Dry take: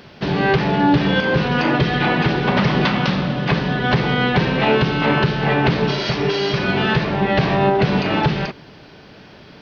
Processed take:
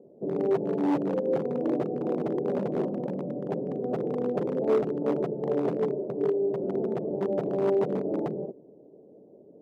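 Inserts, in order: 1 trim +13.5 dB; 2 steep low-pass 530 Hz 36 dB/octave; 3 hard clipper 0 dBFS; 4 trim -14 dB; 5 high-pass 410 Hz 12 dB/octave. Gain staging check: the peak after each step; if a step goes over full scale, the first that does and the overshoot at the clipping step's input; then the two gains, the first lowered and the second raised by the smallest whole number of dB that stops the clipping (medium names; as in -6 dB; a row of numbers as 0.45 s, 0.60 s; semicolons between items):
+8.5 dBFS, +8.0 dBFS, 0.0 dBFS, -14.0 dBFS, -13.5 dBFS; step 1, 8.0 dB; step 1 +5.5 dB, step 4 -6 dB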